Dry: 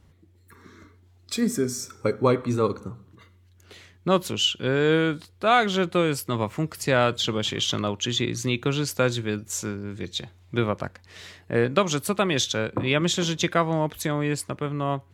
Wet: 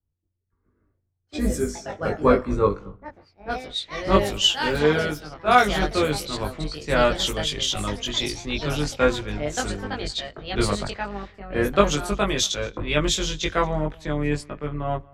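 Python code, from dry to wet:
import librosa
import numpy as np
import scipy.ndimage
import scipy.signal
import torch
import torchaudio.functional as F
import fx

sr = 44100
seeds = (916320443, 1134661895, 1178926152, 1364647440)

p1 = fx.octave_divider(x, sr, octaves=2, level_db=-4.0)
p2 = fx.low_shelf(p1, sr, hz=170.0, db=-9.5)
p3 = p2 + fx.echo_single(p2, sr, ms=232, db=-22.0, dry=0)
p4 = fx.echo_pitch(p3, sr, ms=229, semitones=4, count=2, db_per_echo=-6.0)
p5 = fx.env_lowpass(p4, sr, base_hz=940.0, full_db=-21.0)
p6 = fx.low_shelf(p5, sr, hz=78.0, db=11.0)
p7 = fx.doubler(p6, sr, ms=20.0, db=-2.0)
p8 = fx.rider(p7, sr, range_db=4, speed_s=2.0)
p9 = p7 + F.gain(torch.from_numpy(p8), -2.5).numpy()
p10 = fx.band_widen(p9, sr, depth_pct=70)
y = F.gain(torch.from_numpy(p10), -7.0).numpy()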